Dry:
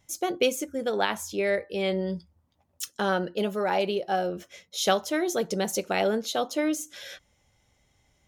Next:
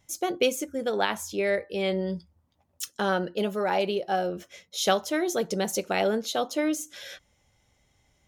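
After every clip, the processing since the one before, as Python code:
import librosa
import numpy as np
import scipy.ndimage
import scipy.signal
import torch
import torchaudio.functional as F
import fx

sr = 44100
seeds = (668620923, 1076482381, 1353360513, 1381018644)

y = x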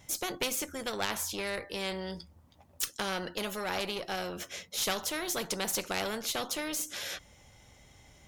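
y = fx.diode_clip(x, sr, knee_db=-15.5)
y = fx.spectral_comp(y, sr, ratio=2.0)
y = y * librosa.db_to_amplitude(-3.0)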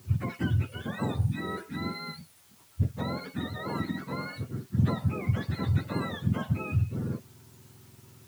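y = fx.octave_mirror(x, sr, pivot_hz=880.0)
y = fx.quant_dither(y, sr, seeds[0], bits=10, dither='triangular')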